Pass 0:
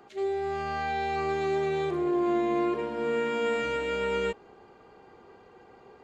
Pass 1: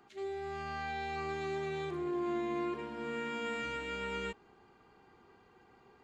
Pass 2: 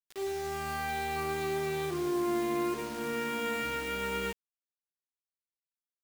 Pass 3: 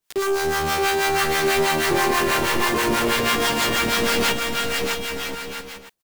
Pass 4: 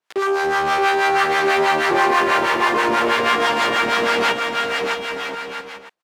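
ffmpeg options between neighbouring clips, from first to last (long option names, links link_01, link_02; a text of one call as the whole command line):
ffmpeg -i in.wav -af "equalizer=frequency=540:width=1.6:gain=-9.5,volume=-5.5dB" out.wav
ffmpeg -i in.wav -af "acrusher=bits=7:mix=0:aa=0.000001,volume=4.5dB" out.wav
ffmpeg -i in.wav -filter_complex "[0:a]aeval=exprs='0.0794*sin(PI/2*3.98*val(0)/0.0794)':channel_layout=same,aecho=1:1:620|1023|1285|1455|1566:0.631|0.398|0.251|0.158|0.1,acrossover=split=700[link_01][link_02];[link_01]aeval=exprs='val(0)*(1-0.7/2+0.7/2*cos(2*PI*6.2*n/s))':channel_layout=same[link_03];[link_02]aeval=exprs='val(0)*(1-0.7/2-0.7/2*cos(2*PI*6.2*n/s))':channel_layout=same[link_04];[link_03][link_04]amix=inputs=2:normalize=0,volume=6dB" out.wav
ffmpeg -i in.wav -af "bandpass=frequency=1000:width_type=q:width=0.62:csg=0,volume=6dB" out.wav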